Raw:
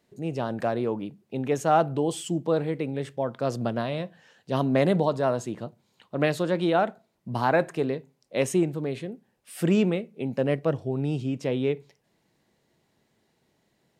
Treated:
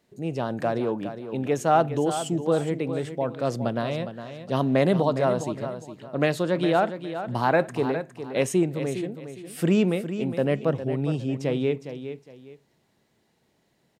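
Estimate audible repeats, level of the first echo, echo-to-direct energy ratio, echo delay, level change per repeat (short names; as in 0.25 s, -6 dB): 2, -10.5 dB, -10.0 dB, 0.41 s, -11.0 dB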